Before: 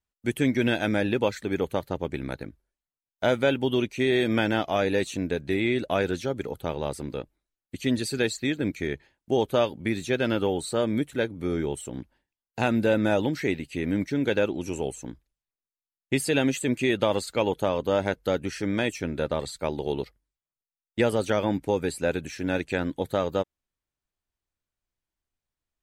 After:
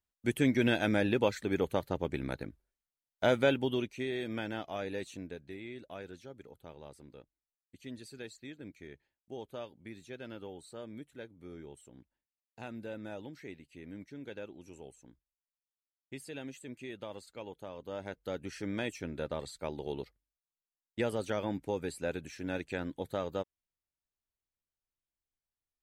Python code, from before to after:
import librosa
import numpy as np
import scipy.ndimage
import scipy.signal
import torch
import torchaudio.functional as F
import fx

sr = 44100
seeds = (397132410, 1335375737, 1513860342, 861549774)

y = fx.gain(x, sr, db=fx.line((3.48, -4.0), (4.14, -13.5), (5.14, -13.5), (5.6, -20.0), (17.67, -20.0), (18.58, -9.5)))